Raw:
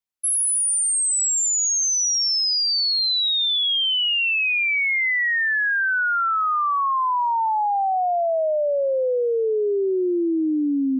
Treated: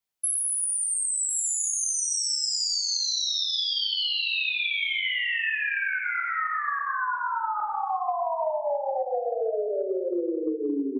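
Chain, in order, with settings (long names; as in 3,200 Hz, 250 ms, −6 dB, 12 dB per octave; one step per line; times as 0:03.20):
reverb reduction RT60 0.58 s
mains-hum notches 60/120/180/240/300/360 Hz
single-tap delay 1,058 ms −5 dB
0:05.83–0:07.94: shaped tremolo saw up 4.7 Hz → 1.7 Hz, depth 90%
convolution reverb RT60 1.3 s, pre-delay 7 ms, DRR −2.5 dB
downward compressor 6 to 1, threshold −27 dBFS, peak gain reduction 15 dB
level +1.5 dB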